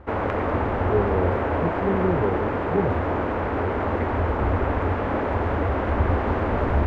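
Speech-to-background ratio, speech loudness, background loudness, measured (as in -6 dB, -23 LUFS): -3.0 dB, -27.5 LUFS, -24.5 LUFS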